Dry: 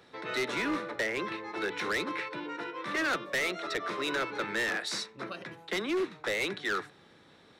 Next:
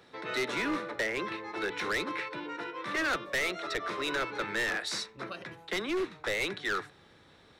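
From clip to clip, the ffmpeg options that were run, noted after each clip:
-af "asubboost=boost=3:cutoff=99"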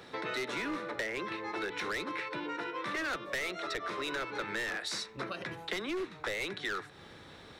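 -af "acompressor=threshold=-42dB:ratio=5,volume=7dB"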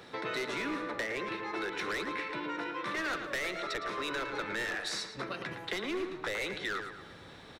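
-filter_complex "[0:a]asplit=2[a][b];[b]adelay=111,lowpass=f=3.5k:p=1,volume=-7dB,asplit=2[c][d];[d]adelay=111,lowpass=f=3.5k:p=1,volume=0.48,asplit=2[e][f];[f]adelay=111,lowpass=f=3.5k:p=1,volume=0.48,asplit=2[g][h];[h]adelay=111,lowpass=f=3.5k:p=1,volume=0.48,asplit=2[i][j];[j]adelay=111,lowpass=f=3.5k:p=1,volume=0.48,asplit=2[k][l];[l]adelay=111,lowpass=f=3.5k:p=1,volume=0.48[m];[a][c][e][g][i][k][m]amix=inputs=7:normalize=0"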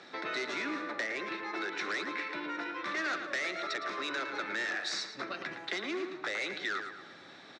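-af "highpass=280,equalizer=f=470:t=q:w=4:g=-9,equalizer=f=970:t=q:w=4:g=-6,equalizer=f=3k:t=q:w=4:g=-5,lowpass=f=6.8k:w=0.5412,lowpass=f=6.8k:w=1.3066,volume=2dB"

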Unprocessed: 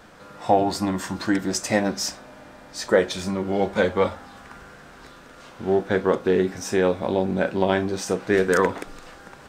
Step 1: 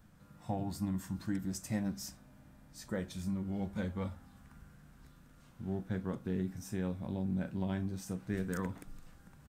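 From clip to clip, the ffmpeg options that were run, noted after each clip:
-af "firequalizer=gain_entry='entry(150,0);entry(400,-19);entry(1000,-17);entry(4600,-16);entry(12000,-3)':delay=0.05:min_phase=1,volume=-4.5dB"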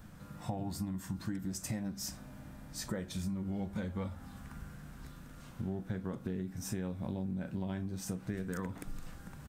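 -af "acompressor=threshold=-43dB:ratio=10,volume=9dB"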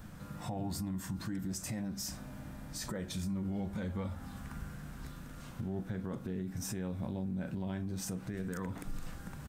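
-af "alimiter=level_in=9.5dB:limit=-24dB:level=0:latency=1:release=30,volume=-9.5dB,volume=3.5dB"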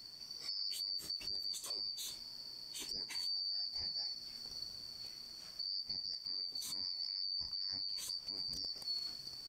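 -af "afftfilt=real='real(if(lt(b,272),68*(eq(floor(b/68),0)*1+eq(floor(b/68),1)*2+eq(floor(b/68),2)*3+eq(floor(b/68),3)*0)+mod(b,68),b),0)':imag='imag(if(lt(b,272),68*(eq(floor(b/68),0)*1+eq(floor(b/68),1)*2+eq(floor(b/68),2)*3+eq(floor(b/68),3)*0)+mod(b,68),b),0)':win_size=2048:overlap=0.75,volume=-4dB"

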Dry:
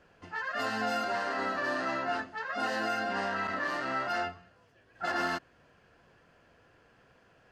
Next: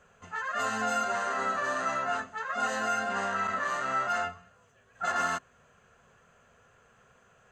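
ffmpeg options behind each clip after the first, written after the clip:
-af "superequalizer=6b=0.251:10b=1.78:14b=0.562:15b=3.55"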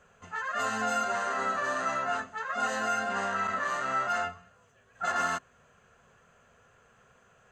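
-af anull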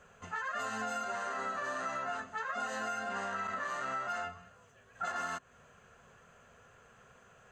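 -af "acompressor=threshold=-36dB:ratio=6,volume=1.5dB"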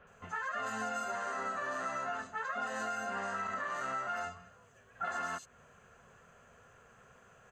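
-filter_complex "[0:a]acrossover=split=3700[a][b];[b]adelay=70[c];[a][c]amix=inputs=2:normalize=0"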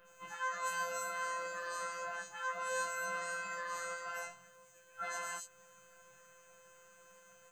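-af "aemphasis=mode=production:type=75kf,afftfilt=real='hypot(re,im)*cos(PI*b)':imag='0':win_size=1024:overlap=0.75,afftfilt=real='re*1.73*eq(mod(b,3),0)':imag='im*1.73*eq(mod(b,3),0)':win_size=2048:overlap=0.75,volume=2.5dB"

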